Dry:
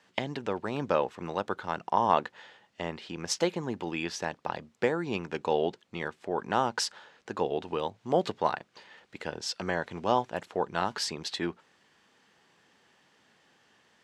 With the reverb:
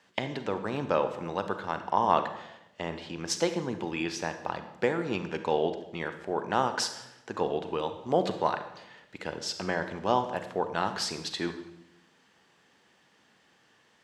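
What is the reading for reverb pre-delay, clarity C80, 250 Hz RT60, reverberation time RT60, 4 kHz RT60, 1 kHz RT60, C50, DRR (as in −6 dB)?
33 ms, 12.5 dB, 1.0 s, 0.85 s, 0.70 s, 0.75 s, 9.5 dB, 8.5 dB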